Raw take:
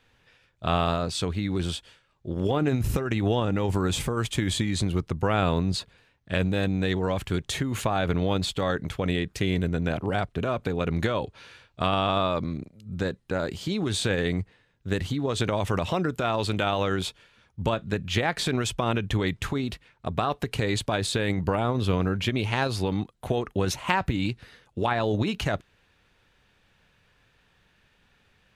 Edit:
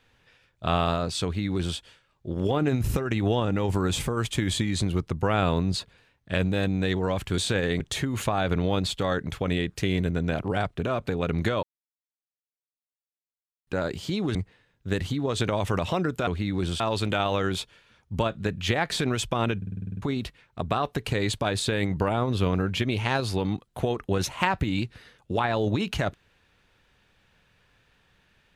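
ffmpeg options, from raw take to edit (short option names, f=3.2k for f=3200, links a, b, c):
-filter_complex "[0:a]asplit=17[a][b][c][d][e][f][g][h][i][j][k][l][m][n][o][p][q];[a]atrim=end=7.382[r];[b]atrim=start=13.928:end=14.352[s];[c]atrim=start=7.378:end=11.21,asetpts=PTS-STARTPTS,afade=t=out:st=3.828:d=0.004:c=hsin[t];[d]atrim=start=11.21:end=13.25,asetpts=PTS-STARTPTS,volume=0[u];[e]atrim=start=13.25:end=13.932,asetpts=PTS-STARTPTS,afade=t=in:d=0.004:c=hsin[v];[f]atrim=start=14.348:end=16.272[w];[g]atrim=start=1.238:end=1.772[x];[h]atrim=start=16.268:end=19.092[y];[i]atrim=start=19.038:end=19.092[z];[j]atrim=start=19.038:end=19.092[aa];[k]atrim=start=19.038:end=19.092[ab];[l]atrim=start=19.038:end=19.092[ac];[m]atrim=start=19.038:end=19.092[ad];[n]atrim=start=19.038:end=19.092[ae];[o]atrim=start=19.038:end=19.092[af];[p]atrim=start=19.038:end=19.092[ag];[q]atrim=start=19.488[ah];[r][s]acrossfade=d=0.004:c1=hsin:c2=hsin[ai];[t][u][v]concat=n=3:v=0:a=1[aj];[ai][aj]acrossfade=d=0.004:c1=hsin:c2=hsin[ak];[ak][w]acrossfade=d=0.004:c1=hsin:c2=hsin[al];[al][x]acrossfade=d=0.004:c1=hsin:c2=hsin[am];[am][y]acrossfade=d=0.004:c1=hsin:c2=hsin[an];[an][z]acrossfade=d=0.004:c1=hsin:c2=hsin[ao];[ao][aa]acrossfade=d=0.004:c1=hsin:c2=hsin[ap];[ap][ab]acrossfade=d=0.004:c1=hsin:c2=hsin[aq];[aq][ac]acrossfade=d=0.004:c1=hsin:c2=hsin[ar];[ar][ad]acrossfade=d=0.004:c1=hsin:c2=hsin[as];[as][ae]acrossfade=d=0.004:c1=hsin:c2=hsin[at];[at][af]acrossfade=d=0.004:c1=hsin:c2=hsin[au];[au][ag]acrossfade=d=0.004:c1=hsin:c2=hsin[av];[av][ah]acrossfade=d=0.004:c1=hsin:c2=hsin"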